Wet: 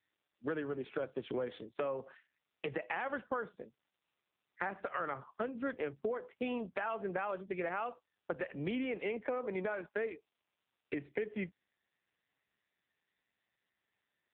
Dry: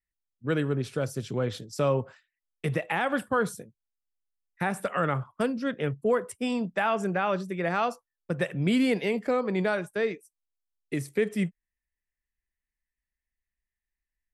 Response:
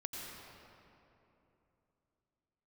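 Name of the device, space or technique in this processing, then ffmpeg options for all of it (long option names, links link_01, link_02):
voicemail: -af "highpass=320,lowpass=3000,acompressor=threshold=-38dB:ratio=8,volume=5dB" -ar 8000 -c:a libopencore_amrnb -b:a 5900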